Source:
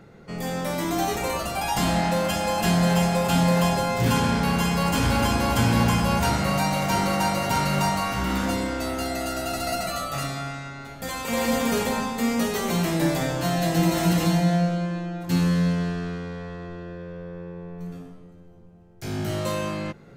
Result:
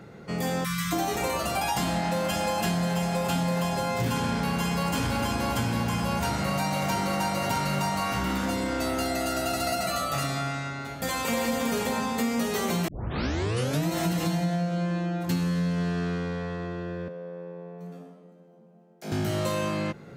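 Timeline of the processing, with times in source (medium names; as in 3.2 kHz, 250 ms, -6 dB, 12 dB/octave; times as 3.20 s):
0.64–0.92 s: spectral selection erased 210–1000 Hz
12.88 s: tape start 1.01 s
17.08–19.12 s: rippled Chebyshev high-pass 150 Hz, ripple 9 dB
whole clip: compression, threshold -27 dBFS; high-pass 66 Hz; trim +3 dB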